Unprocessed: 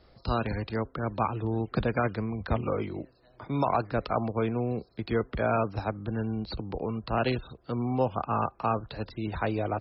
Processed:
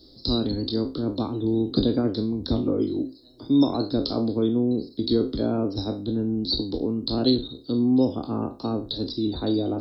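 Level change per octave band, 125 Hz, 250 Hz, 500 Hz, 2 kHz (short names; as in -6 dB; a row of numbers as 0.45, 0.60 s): +0.5 dB, +10.0 dB, +3.0 dB, under -10 dB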